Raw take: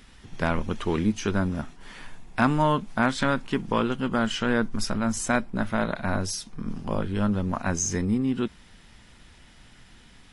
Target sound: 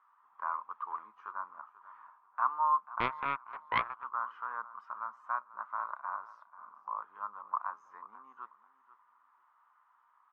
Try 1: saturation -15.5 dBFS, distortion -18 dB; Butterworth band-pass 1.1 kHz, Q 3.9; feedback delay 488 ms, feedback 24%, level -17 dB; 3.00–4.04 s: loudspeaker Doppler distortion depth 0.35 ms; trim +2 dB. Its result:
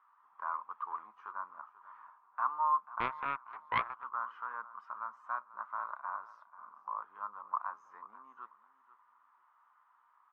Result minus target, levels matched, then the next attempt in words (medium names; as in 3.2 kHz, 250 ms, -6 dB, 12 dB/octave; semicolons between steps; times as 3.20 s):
saturation: distortion +16 dB
saturation -5.5 dBFS, distortion -34 dB; Butterworth band-pass 1.1 kHz, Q 3.9; feedback delay 488 ms, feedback 24%, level -17 dB; 3.00–4.04 s: loudspeaker Doppler distortion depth 0.35 ms; trim +2 dB